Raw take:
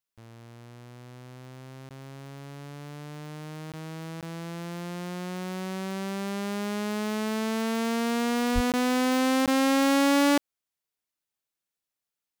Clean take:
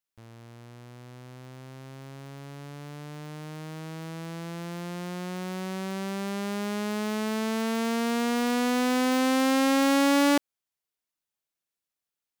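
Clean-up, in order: 8.54–8.66 HPF 140 Hz 24 dB/oct; interpolate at 1.89/3.72/4.21/8.72/9.46, 17 ms

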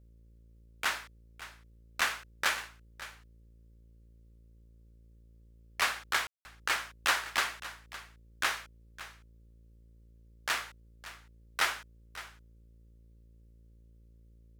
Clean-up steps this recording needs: de-hum 56.5 Hz, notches 10; room tone fill 6.27–6.45; inverse comb 0.562 s -15.5 dB

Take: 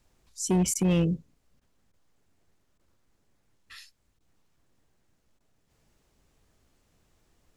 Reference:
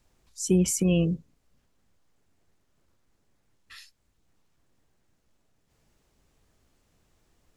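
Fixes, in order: clip repair -19 dBFS; interpolate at 0.74/1.6/1.92/2.78/4.19/5.39, 13 ms

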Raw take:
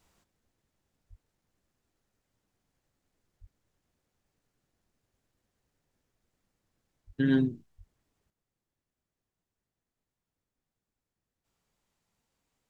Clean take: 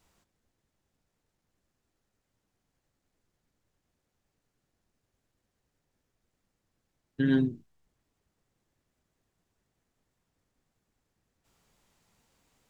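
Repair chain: de-plosive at 1.09/3.4/7.06/7.77; gain 0 dB, from 8.3 s +10 dB

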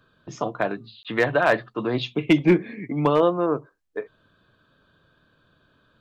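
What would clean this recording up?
clip repair -9.5 dBFS; interpolate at 1.03, 17 ms

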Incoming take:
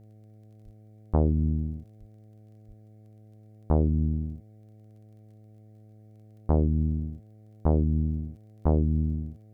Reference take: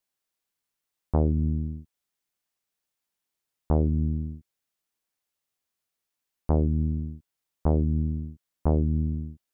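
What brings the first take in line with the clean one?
de-click; de-hum 107.3 Hz, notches 7; 0.64–0.76 HPF 140 Hz 24 dB/oct; 1.99–2.11 HPF 140 Hz 24 dB/oct; 2.67–2.79 HPF 140 Hz 24 dB/oct; expander -44 dBFS, range -21 dB

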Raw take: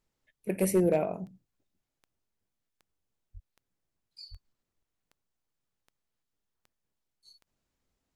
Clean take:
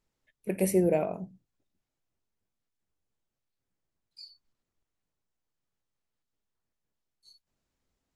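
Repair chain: clip repair -17 dBFS; de-click; de-plosive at 3.33/4.3

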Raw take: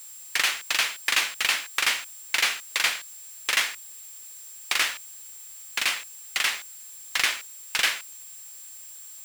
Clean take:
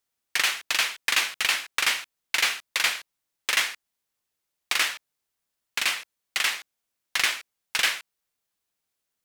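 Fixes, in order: notch 7500 Hz, Q 30; denoiser 30 dB, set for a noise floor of -44 dBFS

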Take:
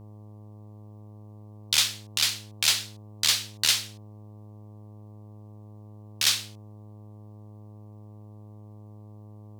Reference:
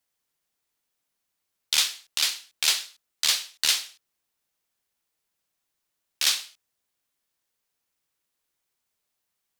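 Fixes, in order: de-hum 105.3 Hz, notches 11

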